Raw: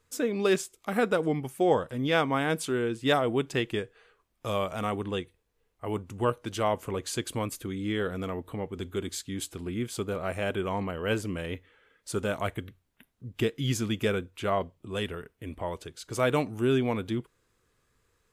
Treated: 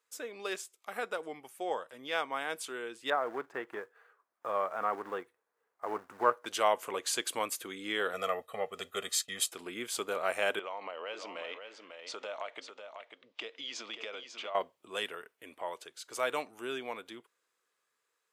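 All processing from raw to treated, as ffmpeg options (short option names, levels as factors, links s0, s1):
-filter_complex "[0:a]asettb=1/sr,asplit=3[s0][s1][s2];[s0]atrim=end=3.104[s3];[s1]atrim=start=3.1:end=6.46,asetpts=PTS-STARTPTS,afade=t=in:d=0.004:c=qsin,afade=t=out:st=3.356:d=0.004:c=qsin,acrusher=bits=3:mode=log:mix=0:aa=0.000001,acrossover=split=2700[s4][s5];[s5]acompressor=threshold=0.00282:ratio=4:attack=1:release=60[s6];[s4][s6]amix=inputs=2:normalize=0,highshelf=f=2100:t=q:w=1.5:g=-10[s7];[s2]atrim=start=6.456[s8];[s3][s7]acrossfade=d=0.004:c1=hsin:c2=qsin[s9];[s9][s8]acrossfade=d=0.004:c1=qsin:c2=hsin,asettb=1/sr,asplit=3[s10][s11][s12];[s10]atrim=end=8.134[s13];[s11]atrim=start=8.13:end=9.52,asetpts=PTS-STARTPTS,afade=t=in:d=0.004:c=qsin,afade=t=out:st=1.386:d=0.004:c=qsin,agate=range=0.0224:threshold=0.00708:ratio=3:release=100:detection=peak,aecho=1:1:1.6:0.92,atrim=end_sample=61299[s14];[s12]atrim=start=9.516[s15];[s13][s14]acrossfade=d=0.004:c1=hsin:c2=qsin[s16];[s16][s15]acrossfade=d=0.004:c1=qsin:c2=hsin,asettb=1/sr,asplit=3[s17][s18][s19];[s17]atrim=end=10.594[s20];[s18]atrim=start=10.59:end=14.55,asetpts=PTS-STARTPTS,afade=t=in:d=0.004:c=qsin,afade=t=out:st=3.956:d=0.004:c=qsin,highpass=350,equalizer=f=380:t=q:w=4:g=-5,equalizer=f=590:t=q:w=4:g=4,equalizer=f=1600:t=q:w=4:g=-7,lowpass=f=5200:w=0.5412,lowpass=f=5200:w=1.3066,acompressor=threshold=0.0158:ratio=6:attack=3.2:release=140:knee=1:detection=peak,aecho=1:1:546:0.422,atrim=end_sample=174636[s21];[s19]atrim=start=14.546[s22];[s20][s21]acrossfade=d=0.004:c1=hsin:c2=qsin[s23];[s23][s22]acrossfade=d=0.004:c1=qsin:c2=hsin,highpass=610,dynaudnorm=f=780:g=11:m=3.55,volume=0.447"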